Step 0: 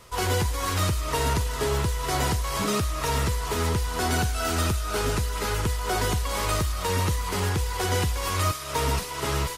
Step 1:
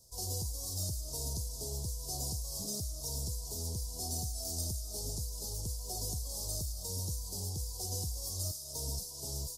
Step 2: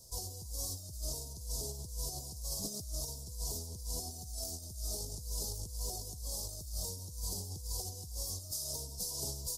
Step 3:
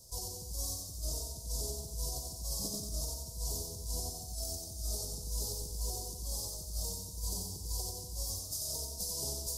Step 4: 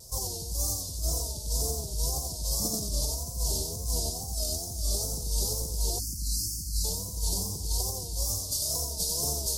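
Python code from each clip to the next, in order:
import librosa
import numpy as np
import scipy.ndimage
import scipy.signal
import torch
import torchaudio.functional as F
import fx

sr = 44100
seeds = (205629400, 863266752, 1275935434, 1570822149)

y1 = scipy.signal.sosfilt(scipy.signal.cheby1(3, 1.0, [690.0, 5000.0], 'bandstop', fs=sr, output='sos'), x)
y1 = fx.tone_stack(y1, sr, knobs='5-5-5')
y1 = y1 * 10.0 ** (2.0 / 20.0)
y2 = fx.over_compress(y1, sr, threshold_db=-41.0, ratio=-0.5)
y2 = y2 * 10.0 ** (1.5 / 20.0)
y3 = fx.echo_feedback(y2, sr, ms=91, feedback_pct=47, wet_db=-4)
y4 = fx.spec_erase(y3, sr, start_s=5.99, length_s=0.85, low_hz=340.0, high_hz=4100.0)
y4 = fx.wow_flutter(y4, sr, seeds[0], rate_hz=2.1, depth_cents=120.0)
y4 = y4 * 10.0 ** (8.0 / 20.0)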